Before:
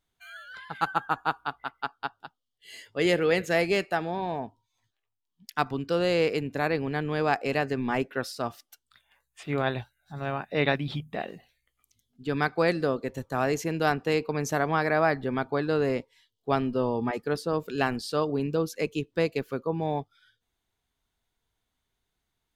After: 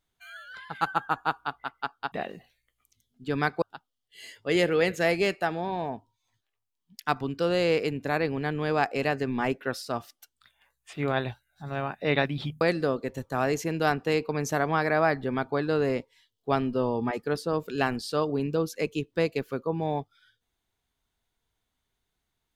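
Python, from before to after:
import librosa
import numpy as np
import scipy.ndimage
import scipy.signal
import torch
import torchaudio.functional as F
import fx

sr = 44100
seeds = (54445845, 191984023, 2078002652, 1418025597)

y = fx.edit(x, sr, fx.move(start_s=11.11, length_s=1.5, to_s=2.12), tone=tone)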